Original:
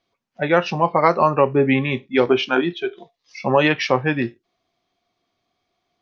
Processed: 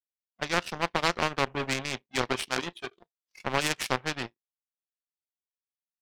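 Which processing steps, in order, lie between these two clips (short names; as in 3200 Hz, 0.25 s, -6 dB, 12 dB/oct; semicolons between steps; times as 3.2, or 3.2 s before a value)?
power-law curve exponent 2; spectral compressor 2:1; gain -4.5 dB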